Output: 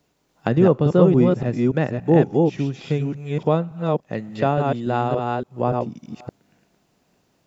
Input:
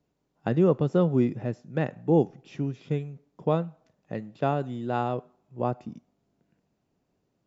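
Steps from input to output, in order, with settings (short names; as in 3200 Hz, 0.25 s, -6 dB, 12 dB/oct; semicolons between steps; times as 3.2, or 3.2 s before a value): reverse delay 0.286 s, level -2.5 dB; mismatched tape noise reduction encoder only; gain +5.5 dB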